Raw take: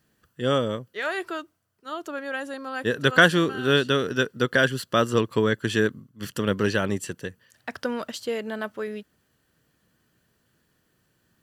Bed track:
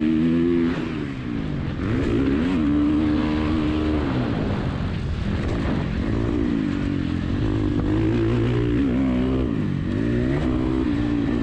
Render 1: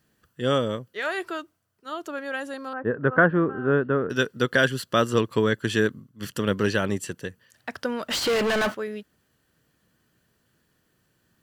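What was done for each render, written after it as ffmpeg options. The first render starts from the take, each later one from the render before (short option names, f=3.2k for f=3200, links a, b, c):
-filter_complex "[0:a]asettb=1/sr,asplit=3[a][b][c];[a]atrim=end=2.734[d];[b]atrim=start=2.73:end=4.1,asetpts=PTS-STARTPTS,afade=t=in:d=0.004:c=qsin,afade=t=out:st=1.366:d=0.004:c=qsin,lowpass=f=1.5k:w=0.5412,lowpass=f=1.5k:w=1.3066[e];[c]atrim=start=4.096[f];[d][e]acrossfade=d=0.004:c1=hsin:c2=qsin[g];[g][f]acrossfade=d=0.004:c1=qsin:c2=hsin,asplit=3[h][i][j];[h]afade=t=out:st=8.1:d=0.02[k];[i]asplit=2[l][m];[m]highpass=f=720:p=1,volume=37dB,asoftclip=type=tanh:threshold=-16dB[n];[l][n]amix=inputs=2:normalize=0,lowpass=f=3.5k:p=1,volume=-6dB,afade=t=in:st=8.1:d=0.02,afade=t=out:st=8.73:d=0.02[o];[j]afade=t=in:st=8.73:d=0.02[p];[k][o][p]amix=inputs=3:normalize=0"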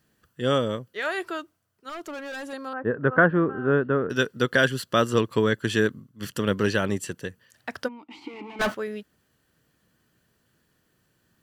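-filter_complex "[0:a]asettb=1/sr,asplit=3[a][b][c];[a]atrim=end=1.894[d];[b]atrim=start=1.89:end=2.53,asetpts=PTS-STARTPTS,afade=t=in:d=0.004:c=qsin,afade=t=out:st=0.636:d=0.004:c=qsin,volume=32.5dB,asoftclip=hard,volume=-32.5dB[e];[c]atrim=start=2.526[f];[d][e]acrossfade=d=0.004:c1=hsin:c2=qsin[g];[g][f]acrossfade=d=0.004:c1=qsin:c2=hsin,asplit=3[h][i][j];[h]afade=t=out:st=7.87:d=0.02[k];[i]asplit=3[l][m][n];[l]bandpass=f=300:t=q:w=8,volume=0dB[o];[m]bandpass=f=870:t=q:w=8,volume=-6dB[p];[n]bandpass=f=2.24k:t=q:w=8,volume=-9dB[q];[o][p][q]amix=inputs=3:normalize=0,afade=t=in:st=7.87:d=0.02,afade=t=out:st=8.59:d=0.02[r];[j]afade=t=in:st=8.59:d=0.02[s];[k][r][s]amix=inputs=3:normalize=0"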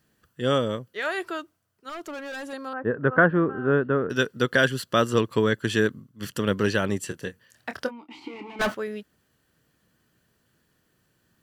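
-filter_complex "[0:a]asettb=1/sr,asplit=3[a][b][c];[a]atrim=end=7.074[d];[b]atrim=start=7.07:end=8.49,asetpts=PTS-STARTPTS,afade=t=in:d=0.004:c=qsin,afade=t=out:st=1.416:d=0.004:c=qsin,asplit=2[e][f];[f]adelay=26,volume=-9.5dB[g];[e][g]amix=inputs=2:normalize=0,atrim=end_sample=62622[h];[c]atrim=start=8.486[i];[d][h]acrossfade=d=0.004:c1=hsin:c2=qsin[j];[j][i]acrossfade=d=0.004:c1=qsin:c2=hsin"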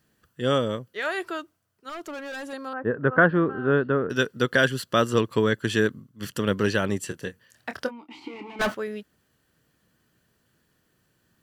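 -filter_complex "[0:a]asettb=1/sr,asplit=3[a][b][c];[a]atrim=end=3.214[d];[b]atrim=start=3.21:end=3.92,asetpts=PTS-STARTPTS,afade=t=in:d=0.004:c=qsin,afade=t=out:st=0.706:d=0.004:c=qsin,lowpass=f=4.6k:t=q:w=3.7[e];[c]atrim=start=3.916[f];[d][e]acrossfade=d=0.004:c1=hsin:c2=qsin[g];[g][f]acrossfade=d=0.004:c1=qsin:c2=hsin"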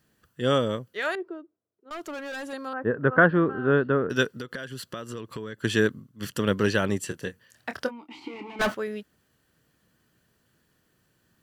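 -filter_complex "[0:a]asettb=1/sr,asplit=3[a][b][c];[a]atrim=end=1.154[d];[b]atrim=start=1.15:end=1.91,asetpts=PTS-STARTPTS,afade=t=in:d=0.004:c=qsin,afade=t=out:st=0.756:d=0.004:c=qsin,bandpass=f=380:t=q:w=2.5[e];[c]atrim=start=1.906[f];[d][e]acrossfade=d=0.004:c1=hsin:c2=qsin[g];[g][f]acrossfade=d=0.004:c1=qsin:c2=hsin,asettb=1/sr,asplit=3[h][i][j];[h]atrim=end=4.274[k];[i]atrim=start=4.27:end=5.62,asetpts=PTS-STARTPTS,afade=t=in:d=0.004:c=qsin,afade=t=out:st=1.346:d=0.004:c=qsin,acompressor=threshold=-32dB:ratio=8:attack=3.2:release=140:knee=1:detection=peak[l];[j]atrim=start=5.616[m];[k][l]acrossfade=d=0.004:c1=hsin:c2=qsin[n];[n][m]acrossfade=d=0.004:c1=qsin:c2=hsin"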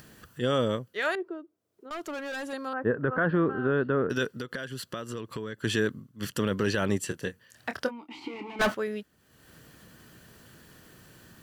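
-af "alimiter=limit=-15dB:level=0:latency=1:release=30,acompressor=mode=upward:threshold=-39dB:ratio=2.5"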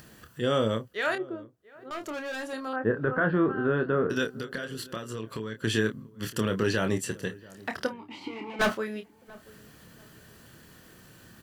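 -filter_complex "[0:a]asplit=2[a][b];[b]adelay=27,volume=-7.5dB[c];[a][c]amix=inputs=2:normalize=0,asplit=2[d][e];[e]adelay=685,lowpass=f=940:p=1,volume=-20.5dB,asplit=2[f][g];[g]adelay=685,lowpass=f=940:p=1,volume=0.3[h];[d][f][h]amix=inputs=3:normalize=0"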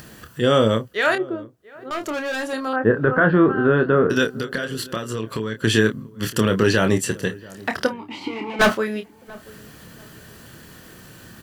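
-af "volume=9dB"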